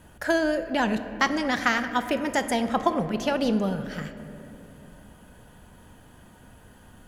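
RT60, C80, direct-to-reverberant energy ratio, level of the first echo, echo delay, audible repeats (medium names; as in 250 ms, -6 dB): 3.0 s, 11.5 dB, 9.0 dB, no echo, no echo, no echo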